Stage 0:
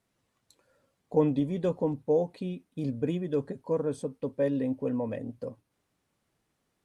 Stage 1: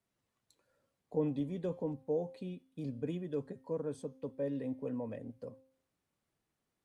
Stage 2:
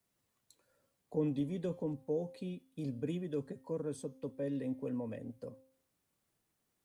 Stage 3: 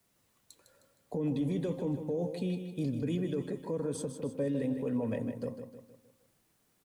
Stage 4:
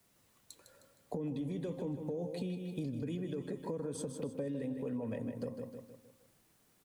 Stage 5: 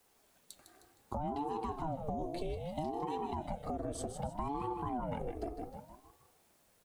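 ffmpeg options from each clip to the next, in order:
-filter_complex "[0:a]bandreject=f=263.6:t=h:w=4,bandreject=f=527.2:t=h:w=4,bandreject=f=790.8:t=h:w=4,bandreject=f=1054.4:t=h:w=4,bandreject=f=1318:t=h:w=4,bandreject=f=1581.6:t=h:w=4,bandreject=f=1845.2:t=h:w=4,bandreject=f=2108.8:t=h:w=4,bandreject=f=2372.4:t=h:w=4,bandreject=f=2636:t=h:w=4,bandreject=f=2899.6:t=h:w=4,bandreject=f=3163.2:t=h:w=4,bandreject=f=3426.8:t=h:w=4,bandreject=f=3690.4:t=h:w=4,bandreject=f=3954:t=h:w=4,bandreject=f=4217.6:t=h:w=4,bandreject=f=4481.2:t=h:w=4,bandreject=f=4744.8:t=h:w=4,bandreject=f=5008.4:t=h:w=4,bandreject=f=5272:t=h:w=4,bandreject=f=5535.6:t=h:w=4,bandreject=f=5799.2:t=h:w=4,bandreject=f=6062.8:t=h:w=4,bandreject=f=6326.4:t=h:w=4,bandreject=f=6590:t=h:w=4,bandreject=f=6853.6:t=h:w=4,bandreject=f=7117.2:t=h:w=4,acrossover=split=200|670[s0][s1][s2];[s2]alimiter=level_in=3.55:limit=0.0631:level=0:latency=1:release=63,volume=0.282[s3];[s0][s1][s3]amix=inputs=3:normalize=0,volume=0.398"
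-filter_complex "[0:a]acrossover=split=540|1100[s0][s1][s2];[s1]acompressor=threshold=0.00224:ratio=6[s3];[s2]crystalizer=i=1:c=0[s4];[s0][s3][s4]amix=inputs=3:normalize=0,volume=1.12"
-filter_complex "[0:a]alimiter=level_in=3.16:limit=0.0631:level=0:latency=1:release=40,volume=0.316,asplit=2[s0][s1];[s1]aecho=0:1:155|310|465|620|775:0.376|0.173|0.0795|0.0366|0.0168[s2];[s0][s2]amix=inputs=2:normalize=0,volume=2.66"
-af "acompressor=threshold=0.0126:ratio=6,volume=1.33"
-af "aeval=exprs='val(0)*sin(2*PI*400*n/s+400*0.55/0.64*sin(2*PI*0.64*n/s))':c=same,volume=1.5"

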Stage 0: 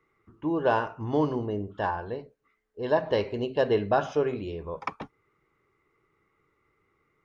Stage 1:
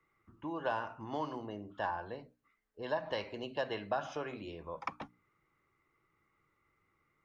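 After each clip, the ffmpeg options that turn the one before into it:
-filter_complex "[0:a]equalizer=f=420:t=o:w=0.38:g=-9.5,bandreject=f=60:t=h:w=6,bandreject=f=120:t=h:w=6,bandreject=f=180:t=h:w=6,bandreject=f=240:t=h:w=6,bandreject=f=300:t=h:w=6,acrossover=split=230|620[s0][s1][s2];[s0]acompressor=threshold=0.00316:ratio=4[s3];[s1]acompressor=threshold=0.0126:ratio=4[s4];[s2]acompressor=threshold=0.0355:ratio=4[s5];[s3][s4][s5]amix=inputs=3:normalize=0,volume=0.631"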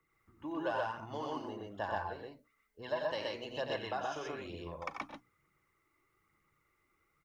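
-af "highshelf=f=4600:g=8.5,aphaser=in_gain=1:out_gain=1:delay=3.6:decay=0.43:speed=1.1:type=triangular,aecho=1:1:90.38|125.4:0.447|0.891,volume=0.596"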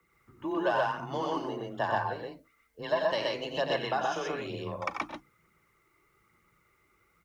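-af "afreqshift=21,volume=2.37"

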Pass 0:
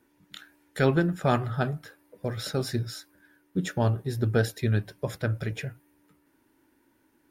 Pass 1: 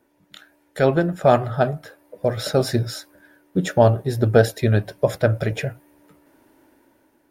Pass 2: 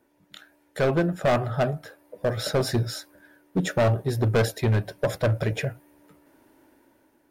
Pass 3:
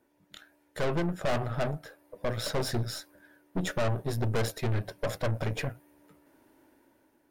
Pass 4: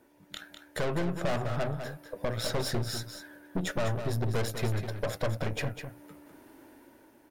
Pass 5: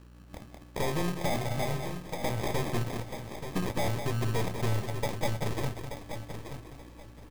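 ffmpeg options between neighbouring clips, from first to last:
-af "equalizer=f=620:t=o:w=0.8:g=10.5,dynaudnorm=f=280:g=7:m=3.16"
-af "asoftclip=type=hard:threshold=0.178,volume=0.794"
-af "aeval=exprs='(tanh(20*val(0)+0.7)-tanh(0.7))/20':c=same"
-filter_complex "[0:a]acompressor=threshold=0.00794:ratio=2,asplit=2[s0][s1];[s1]aecho=0:1:201:0.376[s2];[s0][s2]amix=inputs=2:normalize=0,volume=2.37"
-af "aeval=exprs='val(0)+0.00282*(sin(2*PI*60*n/s)+sin(2*PI*2*60*n/s)/2+sin(2*PI*3*60*n/s)/3+sin(2*PI*4*60*n/s)/4+sin(2*PI*5*60*n/s)/5)':c=same,acrusher=samples=31:mix=1:aa=0.000001,aecho=1:1:880|1760|2640:0.355|0.0816|0.0188"

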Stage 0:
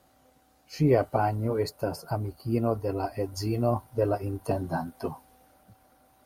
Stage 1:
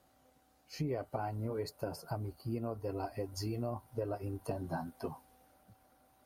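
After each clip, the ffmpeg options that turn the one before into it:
-af "acompressor=threshold=0.0447:ratio=6,volume=0.501"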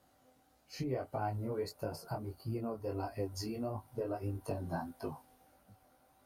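-af "flanger=delay=19:depth=4.4:speed=1.6,volume=1.41"

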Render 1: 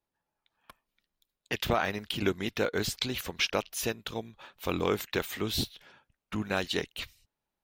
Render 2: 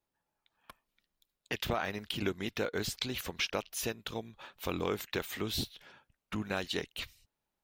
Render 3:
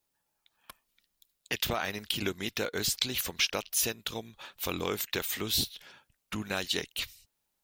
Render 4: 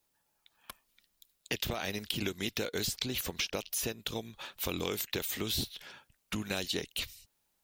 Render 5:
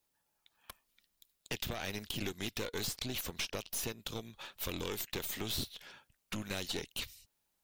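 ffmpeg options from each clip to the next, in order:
-af "acompressor=threshold=0.0126:ratio=1.5"
-af "highshelf=f=3200:g=11.5"
-filter_complex "[0:a]acrossover=split=750|2200[s0][s1][s2];[s0]acompressor=threshold=0.0158:ratio=4[s3];[s1]acompressor=threshold=0.00282:ratio=4[s4];[s2]acompressor=threshold=0.0141:ratio=4[s5];[s3][s4][s5]amix=inputs=3:normalize=0,volume=1.41"
-af "aeval=exprs='(tanh(28.2*val(0)+0.65)-tanh(0.65))/28.2':c=same"

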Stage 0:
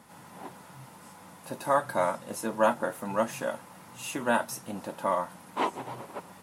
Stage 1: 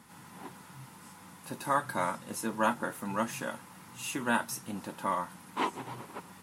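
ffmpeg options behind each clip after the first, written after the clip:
-af "equalizer=f=610:t=o:w=0.79:g=-9.5"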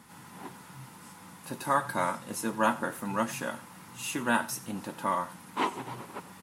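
-af "aecho=1:1:92:0.126,volume=1.26"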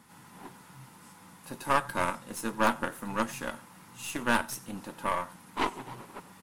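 -af "aeval=exprs='0.266*(cos(1*acos(clip(val(0)/0.266,-1,1)))-cos(1*PI/2))+0.0119*(cos(5*acos(clip(val(0)/0.266,-1,1)))-cos(5*PI/2))+0.0335*(cos(6*acos(clip(val(0)/0.266,-1,1)))-cos(6*PI/2))+0.0211*(cos(7*acos(clip(val(0)/0.266,-1,1)))-cos(7*PI/2))+0.00473*(cos(8*acos(clip(val(0)/0.266,-1,1)))-cos(8*PI/2))':c=same"

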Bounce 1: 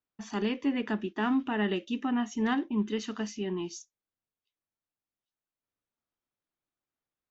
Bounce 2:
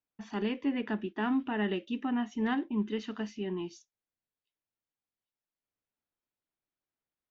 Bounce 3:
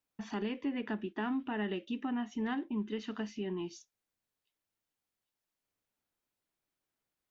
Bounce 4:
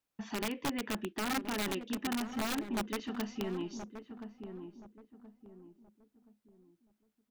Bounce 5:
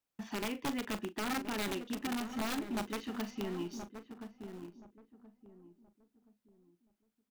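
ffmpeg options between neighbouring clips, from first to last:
-af "lowpass=3700,equalizer=f=1200:t=o:w=0.22:g=-3.5,volume=0.794"
-af "acompressor=threshold=0.00631:ratio=2,volume=1.68"
-filter_complex "[0:a]aeval=exprs='(mod(26.6*val(0)+1,2)-1)/26.6':c=same,asplit=2[s0][s1];[s1]adelay=1025,lowpass=f=900:p=1,volume=0.398,asplit=2[s2][s3];[s3]adelay=1025,lowpass=f=900:p=1,volume=0.37,asplit=2[s4][s5];[s5]adelay=1025,lowpass=f=900:p=1,volume=0.37,asplit=2[s6][s7];[s7]adelay=1025,lowpass=f=900:p=1,volume=0.37[s8];[s2][s4][s6][s8]amix=inputs=4:normalize=0[s9];[s0][s9]amix=inputs=2:normalize=0"
-filter_complex "[0:a]asplit=2[s0][s1];[s1]acrusher=bits=6:mix=0:aa=0.000001,volume=0.266[s2];[s0][s2]amix=inputs=2:normalize=0,asoftclip=type=hard:threshold=0.0376,asplit=2[s3][s4];[s4]adelay=40,volume=0.237[s5];[s3][s5]amix=inputs=2:normalize=0,volume=0.708"

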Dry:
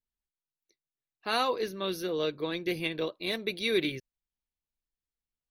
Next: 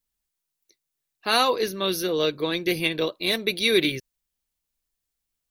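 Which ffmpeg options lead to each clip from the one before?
-af "highshelf=f=4500:g=8,volume=2.11"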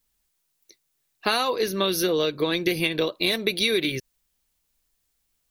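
-af "acompressor=threshold=0.0398:ratio=12,volume=2.66"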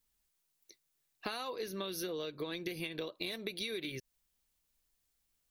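-af "acompressor=threshold=0.0251:ratio=4,volume=0.501"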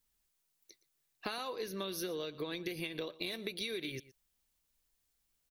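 -af "aecho=1:1:118:0.119"

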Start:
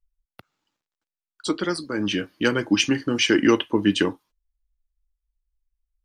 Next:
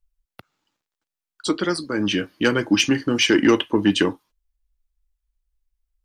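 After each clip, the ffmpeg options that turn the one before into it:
-af "acontrast=63,volume=0.668"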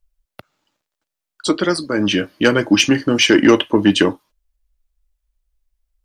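-af "equalizer=f=600:t=o:w=0.3:g=6.5,volume=1.68"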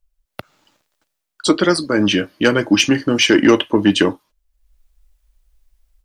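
-af "dynaudnorm=f=250:g=3:m=4.22,volume=0.891"

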